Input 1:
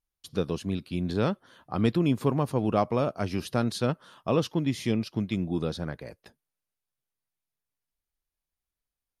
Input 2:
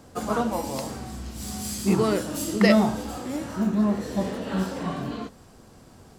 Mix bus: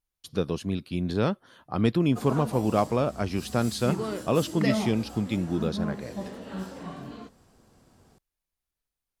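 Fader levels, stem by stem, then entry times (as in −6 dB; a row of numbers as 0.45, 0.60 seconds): +1.0, −9.0 decibels; 0.00, 2.00 seconds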